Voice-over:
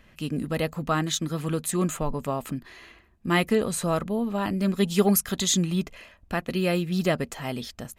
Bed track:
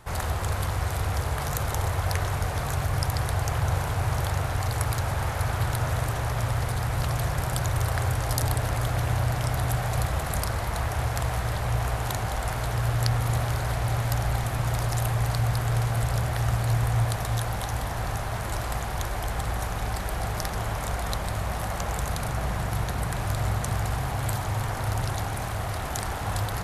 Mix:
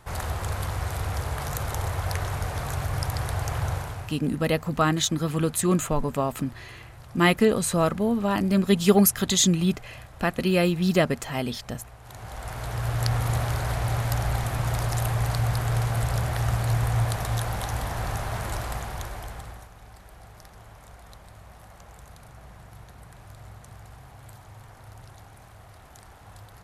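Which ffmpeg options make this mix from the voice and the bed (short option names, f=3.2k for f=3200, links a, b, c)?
-filter_complex "[0:a]adelay=3900,volume=3dB[a];[1:a]volume=17.5dB,afade=t=out:st=3.65:d=0.52:silence=0.133352,afade=t=in:st=12.02:d=1.14:silence=0.105925,afade=t=out:st=18.42:d=1.27:silence=0.11885[b];[a][b]amix=inputs=2:normalize=0"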